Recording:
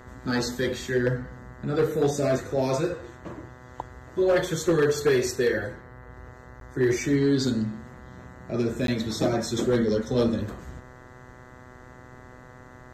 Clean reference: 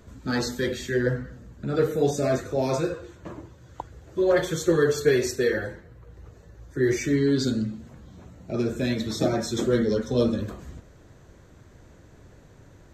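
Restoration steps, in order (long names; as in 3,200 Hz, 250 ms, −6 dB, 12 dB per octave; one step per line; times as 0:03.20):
clipped peaks rebuilt −15.5 dBFS
hum removal 125.5 Hz, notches 16
repair the gap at 0:06.60/0:08.87, 12 ms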